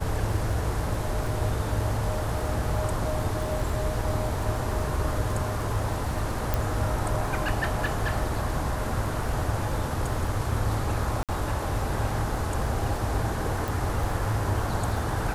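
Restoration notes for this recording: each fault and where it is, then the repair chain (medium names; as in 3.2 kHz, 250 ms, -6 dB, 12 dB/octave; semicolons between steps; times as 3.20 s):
crackle 22 per s -32 dBFS
6.54 s: pop
11.23–11.29 s: dropout 57 ms
13.68 s: pop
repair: de-click; interpolate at 11.23 s, 57 ms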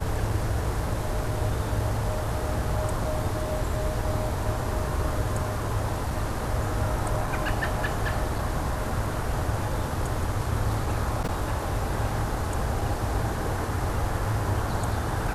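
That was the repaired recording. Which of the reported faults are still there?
nothing left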